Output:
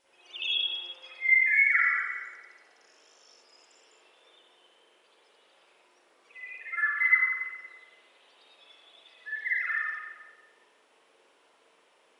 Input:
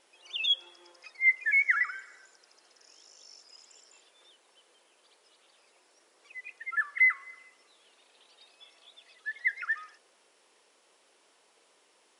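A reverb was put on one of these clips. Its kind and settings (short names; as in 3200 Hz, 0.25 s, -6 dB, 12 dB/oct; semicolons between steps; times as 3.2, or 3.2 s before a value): spring tank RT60 1.2 s, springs 42/53 ms, chirp 65 ms, DRR -9 dB; gain -6.5 dB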